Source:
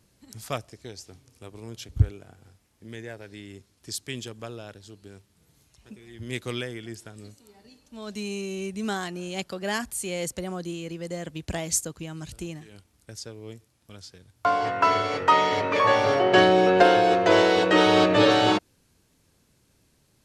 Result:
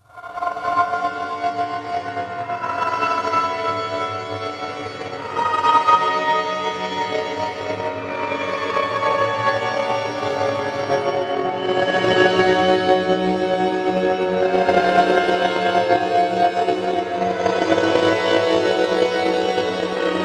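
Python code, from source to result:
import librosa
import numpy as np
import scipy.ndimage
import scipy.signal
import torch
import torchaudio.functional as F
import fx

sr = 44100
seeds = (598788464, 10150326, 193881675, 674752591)

y = fx.paulstretch(x, sr, seeds[0], factor=6.0, window_s=0.25, from_s=14.33)
y = fx.transient(y, sr, attack_db=11, sustain_db=-2)
y = y * 10.0 ** (-1.0 / 20.0)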